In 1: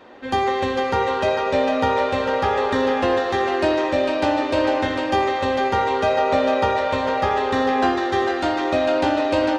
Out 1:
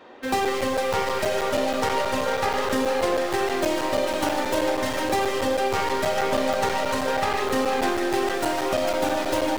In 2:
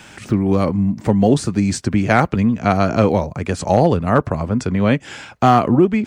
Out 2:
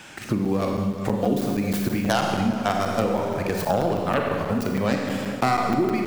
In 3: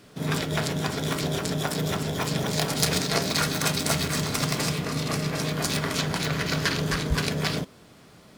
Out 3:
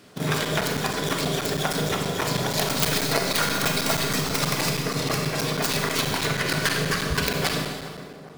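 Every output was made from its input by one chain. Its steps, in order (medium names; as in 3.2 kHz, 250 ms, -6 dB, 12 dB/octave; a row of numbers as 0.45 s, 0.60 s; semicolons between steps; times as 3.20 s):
tracing distortion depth 0.29 ms; bass shelf 93 Hz -10.5 dB; in parallel at -8 dB: bit crusher 5-bit; on the sum: reverb removal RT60 1.4 s; Schroeder reverb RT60 1.4 s, combs from 31 ms, DRR 2 dB; compression 2.5:1, threshold -21 dBFS; tape echo 407 ms, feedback 70%, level -10.5 dB, low-pass 1 kHz; crackling interface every 0.16 s, samples 256, zero, from 0.45 s; normalise loudness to -24 LUFS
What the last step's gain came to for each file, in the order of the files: -1.0 dB, -2.0 dB, +1.5 dB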